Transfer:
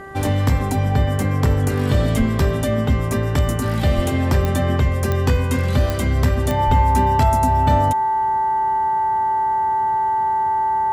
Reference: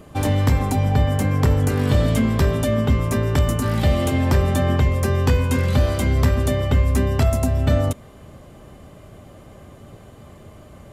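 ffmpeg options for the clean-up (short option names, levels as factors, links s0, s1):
-filter_complex "[0:a]adeclick=t=4,bandreject=f=390.2:t=h:w=4,bandreject=f=780.4:t=h:w=4,bandreject=f=1170.6:t=h:w=4,bandreject=f=1560.8:t=h:w=4,bandreject=f=1951:t=h:w=4,bandreject=f=880:w=30,asplit=3[s0][s1][s2];[s0]afade=t=out:st=2.18:d=0.02[s3];[s1]highpass=f=140:w=0.5412,highpass=f=140:w=1.3066,afade=t=in:st=2.18:d=0.02,afade=t=out:st=2.3:d=0.02[s4];[s2]afade=t=in:st=2.3:d=0.02[s5];[s3][s4][s5]amix=inputs=3:normalize=0,asplit=3[s6][s7][s8];[s6]afade=t=out:st=3.95:d=0.02[s9];[s7]highpass=f=140:w=0.5412,highpass=f=140:w=1.3066,afade=t=in:st=3.95:d=0.02,afade=t=out:st=4.07:d=0.02[s10];[s8]afade=t=in:st=4.07:d=0.02[s11];[s9][s10][s11]amix=inputs=3:normalize=0,asplit=3[s12][s13][s14];[s12]afade=t=out:st=6.66:d=0.02[s15];[s13]highpass=f=140:w=0.5412,highpass=f=140:w=1.3066,afade=t=in:st=6.66:d=0.02,afade=t=out:st=6.78:d=0.02[s16];[s14]afade=t=in:st=6.78:d=0.02[s17];[s15][s16][s17]amix=inputs=3:normalize=0"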